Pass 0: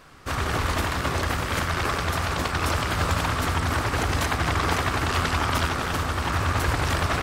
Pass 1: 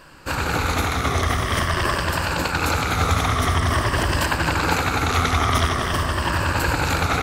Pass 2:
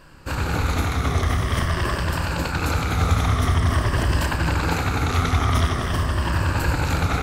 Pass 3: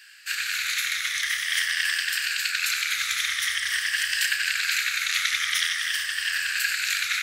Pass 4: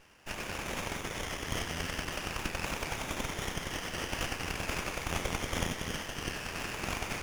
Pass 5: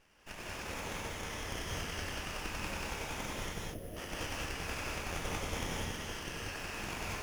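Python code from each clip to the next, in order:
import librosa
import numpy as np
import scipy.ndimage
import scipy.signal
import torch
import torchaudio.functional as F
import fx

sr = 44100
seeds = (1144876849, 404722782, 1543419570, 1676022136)

y1 = fx.spec_ripple(x, sr, per_octave=1.3, drift_hz=-0.47, depth_db=8)
y1 = F.gain(torch.from_numpy(y1), 3.0).numpy()
y2 = fx.low_shelf(y1, sr, hz=230.0, db=9.0)
y2 = fx.doubler(y2, sr, ms=31.0, db=-10.5)
y2 = F.gain(torch.from_numpy(y2), -5.0).numpy()
y3 = scipy.signal.sosfilt(scipy.signal.ellip(4, 1.0, 50, 1700.0, 'highpass', fs=sr, output='sos'), y2)
y3 = F.gain(torch.from_numpy(y3), 7.5).numpy()
y4 = scipy.signal.sosfilt(scipy.signal.cheby1(3, 1.0, 3000.0, 'highpass', fs=sr, output='sos'), y3)
y4 = fx.air_absorb(y4, sr, metres=94.0)
y4 = fx.running_max(y4, sr, window=9)
y5 = fx.spec_box(y4, sr, start_s=3.54, length_s=0.43, low_hz=740.0, high_hz=9600.0, gain_db=-17)
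y5 = fx.rev_gated(y5, sr, seeds[0], gate_ms=230, shape='rising', drr_db=-2.5)
y5 = F.gain(torch.from_numpy(y5), -8.0).numpy()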